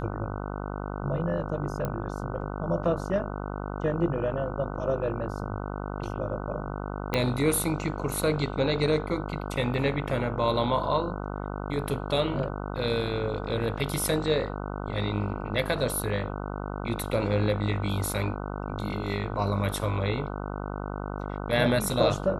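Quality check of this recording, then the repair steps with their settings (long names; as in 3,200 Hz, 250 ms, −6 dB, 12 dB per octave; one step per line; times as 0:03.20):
mains buzz 50 Hz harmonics 30 −34 dBFS
0:01.85: click −17 dBFS
0:07.14: click −11 dBFS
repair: click removal
hum removal 50 Hz, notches 30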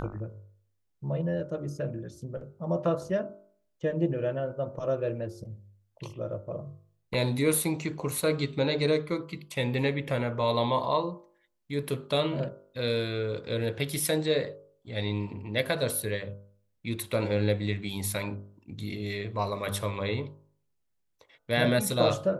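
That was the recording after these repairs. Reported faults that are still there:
0:07.14: click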